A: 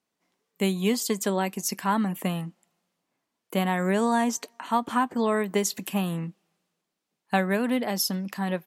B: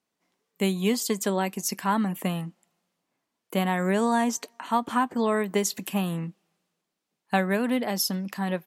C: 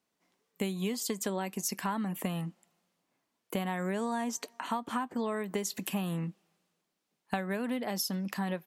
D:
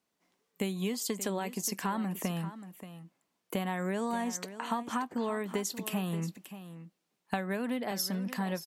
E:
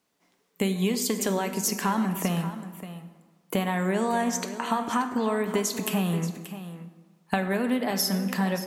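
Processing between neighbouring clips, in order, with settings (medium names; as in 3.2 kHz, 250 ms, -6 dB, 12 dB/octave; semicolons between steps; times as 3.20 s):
no audible change
compression, threshold -30 dBFS, peak gain reduction 11.5 dB
delay 580 ms -13 dB
plate-style reverb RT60 1.5 s, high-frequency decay 0.6×, DRR 7.5 dB; trim +6.5 dB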